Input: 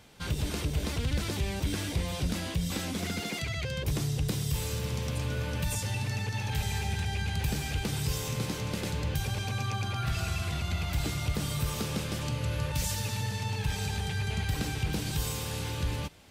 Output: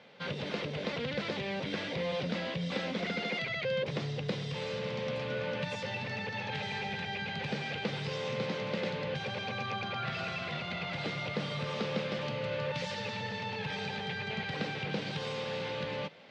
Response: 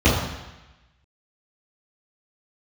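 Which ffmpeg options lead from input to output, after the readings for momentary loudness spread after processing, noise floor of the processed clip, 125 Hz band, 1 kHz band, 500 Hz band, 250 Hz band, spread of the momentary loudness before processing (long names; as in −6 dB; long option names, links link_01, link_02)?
3 LU, −39 dBFS, −9.5 dB, +0.5 dB, +4.5 dB, −2.5 dB, 2 LU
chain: -af "areverse,acompressor=mode=upward:threshold=-49dB:ratio=2.5,areverse,highpass=frequency=160:width=0.5412,highpass=frequency=160:width=1.3066,equalizer=frequency=310:width_type=q:width=4:gain=-8,equalizer=frequency=530:width_type=q:width=4:gain=9,equalizer=frequency=2000:width_type=q:width=4:gain=4,lowpass=frequency=4200:width=0.5412,lowpass=frequency=4200:width=1.3066"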